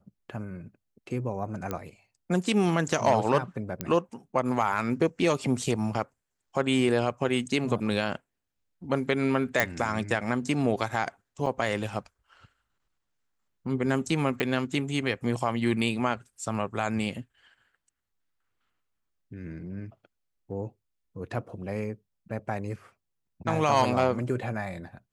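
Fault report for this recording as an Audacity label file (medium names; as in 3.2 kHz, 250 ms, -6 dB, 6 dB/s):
1.710000	1.710000	pop -17 dBFS
3.810000	3.810000	pop -14 dBFS
9.600000	9.600000	pop
11.460000	11.460000	dropout 3.9 ms
14.400000	14.400000	pop -15 dBFS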